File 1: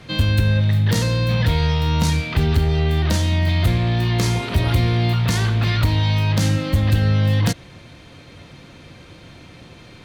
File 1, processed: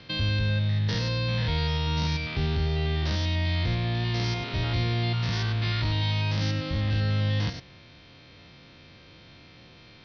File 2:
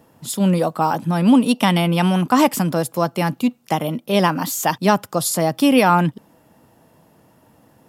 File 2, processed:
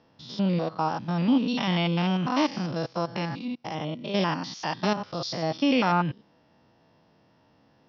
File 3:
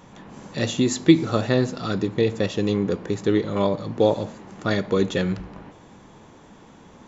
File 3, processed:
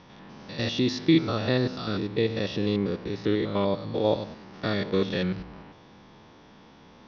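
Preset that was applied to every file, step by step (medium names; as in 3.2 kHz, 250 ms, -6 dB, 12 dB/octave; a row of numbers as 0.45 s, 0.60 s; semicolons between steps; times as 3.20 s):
spectrogram pixelated in time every 100 ms; steep low-pass 5.7 kHz 96 dB/octave; treble shelf 2.4 kHz +7.5 dB; normalise loudness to -27 LUFS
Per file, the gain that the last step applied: -8.5 dB, -7.5 dB, -3.0 dB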